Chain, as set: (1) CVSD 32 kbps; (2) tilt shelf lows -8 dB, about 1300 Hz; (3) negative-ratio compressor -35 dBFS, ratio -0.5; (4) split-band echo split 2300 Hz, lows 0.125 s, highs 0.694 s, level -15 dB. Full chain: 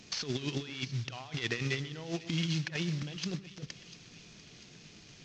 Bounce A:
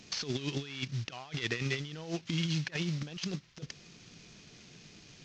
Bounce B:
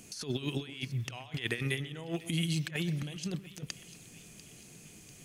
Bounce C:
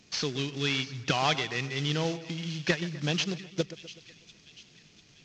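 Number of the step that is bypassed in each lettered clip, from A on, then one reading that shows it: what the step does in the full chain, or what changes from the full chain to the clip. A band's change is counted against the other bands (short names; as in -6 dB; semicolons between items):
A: 4, echo-to-direct -13.5 dB to none; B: 1, 4 kHz band -2.0 dB; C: 3, momentary loudness spread change -11 LU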